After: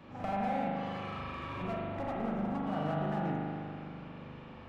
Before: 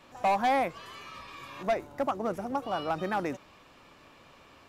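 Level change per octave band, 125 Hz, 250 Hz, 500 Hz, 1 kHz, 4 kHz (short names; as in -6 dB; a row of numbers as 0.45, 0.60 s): +7.5, +2.0, -6.0, -6.5, -7.5 dB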